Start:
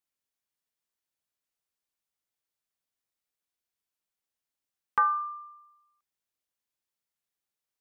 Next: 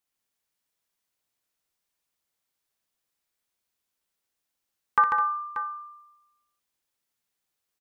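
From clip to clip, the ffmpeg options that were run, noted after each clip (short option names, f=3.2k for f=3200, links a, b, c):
-af "aecho=1:1:61|144|208|585:0.473|0.668|0.282|0.266,volume=4dB"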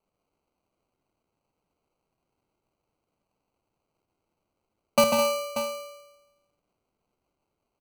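-filter_complex "[0:a]acrossover=split=290|880[a][b][c];[b]alimiter=level_in=8dB:limit=-24dB:level=0:latency=1,volume=-8dB[d];[a][d][c]amix=inputs=3:normalize=0,acrusher=samples=25:mix=1:aa=0.000001,volume=2dB"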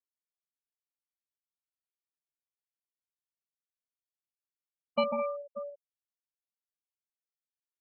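-af "afftfilt=real='re*gte(hypot(re,im),0.178)':imag='im*gte(hypot(re,im),0.178)':win_size=1024:overlap=0.75,volume=-7.5dB"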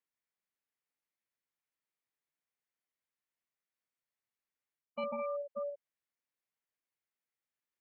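-af "equalizer=f=125:t=o:w=1:g=6,equalizer=f=250:t=o:w=1:g=6,equalizer=f=500:t=o:w=1:g=6,equalizer=f=1k:t=o:w=1:g=5,equalizer=f=2k:t=o:w=1:g=11,areverse,acompressor=threshold=-30dB:ratio=16,areverse,volume=-4.5dB"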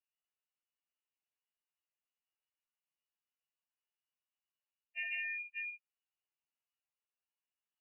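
-af "aemphasis=mode=reproduction:type=riaa,lowpass=f=2.6k:t=q:w=0.5098,lowpass=f=2.6k:t=q:w=0.6013,lowpass=f=2.6k:t=q:w=0.9,lowpass=f=2.6k:t=q:w=2.563,afreqshift=-3000,afftfilt=real='re*2*eq(mod(b,4),0)':imag='im*2*eq(mod(b,4),0)':win_size=2048:overlap=0.75,volume=-3dB"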